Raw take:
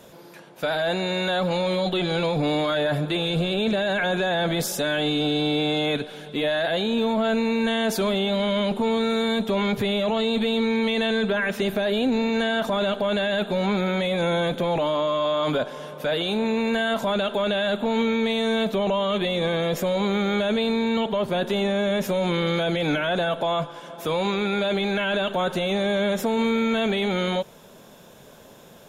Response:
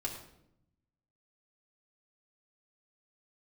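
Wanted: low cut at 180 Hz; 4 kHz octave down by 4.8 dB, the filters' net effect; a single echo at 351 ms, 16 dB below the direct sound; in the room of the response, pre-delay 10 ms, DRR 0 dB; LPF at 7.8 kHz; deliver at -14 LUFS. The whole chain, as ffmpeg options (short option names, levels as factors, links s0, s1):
-filter_complex "[0:a]highpass=180,lowpass=7800,equalizer=f=4000:t=o:g=-5.5,aecho=1:1:351:0.158,asplit=2[s0][s1];[1:a]atrim=start_sample=2205,adelay=10[s2];[s1][s2]afir=irnorm=-1:irlink=0,volume=0.794[s3];[s0][s3]amix=inputs=2:normalize=0,volume=2.37"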